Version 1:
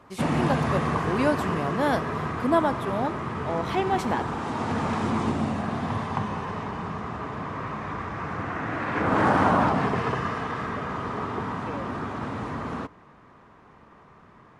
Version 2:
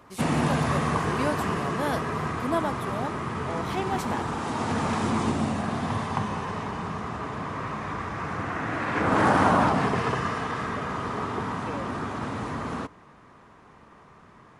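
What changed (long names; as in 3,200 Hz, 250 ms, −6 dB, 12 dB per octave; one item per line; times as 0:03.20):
speech −5.5 dB
master: remove low-pass filter 3,500 Hz 6 dB per octave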